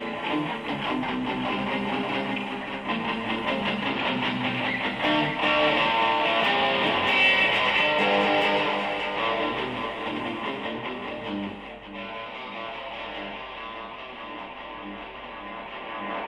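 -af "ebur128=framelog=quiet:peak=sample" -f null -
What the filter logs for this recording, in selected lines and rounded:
Integrated loudness:
  I:         -24.9 LUFS
  Threshold: -35.6 LUFS
Loudness range:
  LRA:        14.8 LU
  Threshold: -45.1 LUFS
  LRA low:   -35.6 LUFS
  LRA high:  -20.9 LUFS
Sample peak:
  Peak:      -10.0 dBFS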